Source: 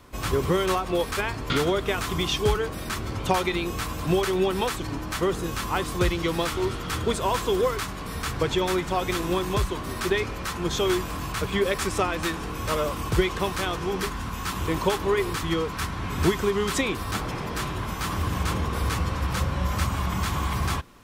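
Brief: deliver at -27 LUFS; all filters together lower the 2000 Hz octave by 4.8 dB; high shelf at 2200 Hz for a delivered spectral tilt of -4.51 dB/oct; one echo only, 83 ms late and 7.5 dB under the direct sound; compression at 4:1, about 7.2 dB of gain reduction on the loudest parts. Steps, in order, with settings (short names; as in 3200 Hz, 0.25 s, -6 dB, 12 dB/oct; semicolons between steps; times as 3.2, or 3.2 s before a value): bell 2000 Hz -8 dB; high shelf 2200 Hz +3 dB; compressor 4:1, threshold -25 dBFS; echo 83 ms -7.5 dB; gain +2 dB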